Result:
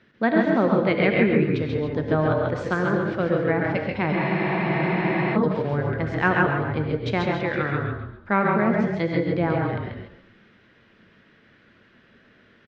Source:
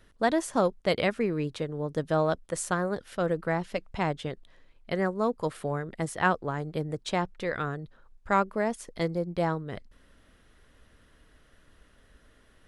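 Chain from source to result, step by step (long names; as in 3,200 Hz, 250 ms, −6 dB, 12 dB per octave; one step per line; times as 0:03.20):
treble cut that deepens with the level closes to 2,900 Hz, closed at −23 dBFS
loudspeaker in its box 120–4,800 Hz, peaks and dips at 140 Hz +8 dB, 220 Hz +9 dB, 360 Hz +6 dB, 1,600 Hz +5 dB, 2,300 Hz +8 dB
on a send: echo with shifted repeats 136 ms, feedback 32%, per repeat −33 Hz, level −3.5 dB
on the sum: reverb whose tail is shaped and stops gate 180 ms rising, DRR 2.5 dB
frozen spectrum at 0:04.16, 1.19 s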